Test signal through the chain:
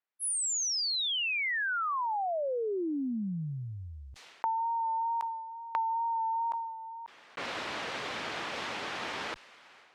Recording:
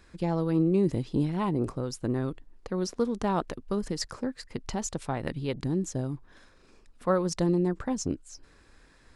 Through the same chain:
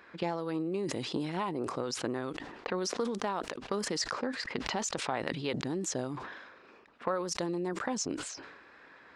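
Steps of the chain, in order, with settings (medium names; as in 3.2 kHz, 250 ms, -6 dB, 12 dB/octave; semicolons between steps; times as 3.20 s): level-controlled noise filter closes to 2.1 kHz, open at -24 dBFS; frequency weighting A; compression 12:1, threshold -38 dBFS; wow and flutter 24 cents; decay stretcher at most 44 dB/s; trim +8 dB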